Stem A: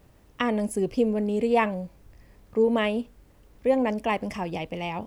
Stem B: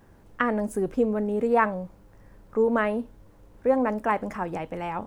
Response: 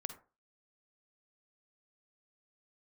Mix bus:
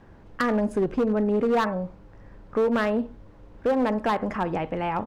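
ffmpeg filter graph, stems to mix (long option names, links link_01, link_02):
-filter_complex "[0:a]volume=-19.5dB[link_01];[1:a]lowpass=4200,acompressor=threshold=-24dB:ratio=2,adelay=0.7,volume=1.5dB,asplit=2[link_02][link_03];[link_03]volume=-5.5dB[link_04];[2:a]atrim=start_sample=2205[link_05];[link_04][link_05]afir=irnorm=-1:irlink=0[link_06];[link_01][link_02][link_06]amix=inputs=3:normalize=0,asoftclip=type=hard:threshold=-18dB"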